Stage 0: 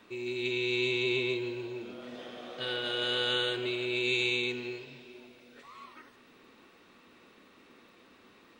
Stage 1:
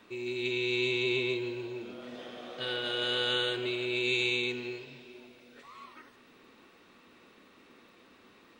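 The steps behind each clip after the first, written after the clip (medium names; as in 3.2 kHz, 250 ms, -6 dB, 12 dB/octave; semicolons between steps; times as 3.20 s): no audible change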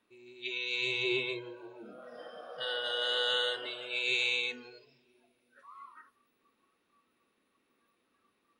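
spectral noise reduction 18 dB; de-hum 62.39 Hz, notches 3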